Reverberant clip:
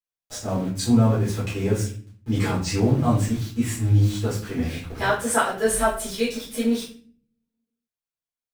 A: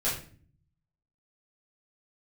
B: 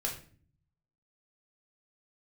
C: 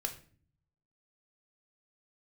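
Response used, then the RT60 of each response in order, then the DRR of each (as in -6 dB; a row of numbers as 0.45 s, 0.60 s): A; 0.45 s, 0.45 s, 0.45 s; -10.0 dB, -1.0 dB, 4.5 dB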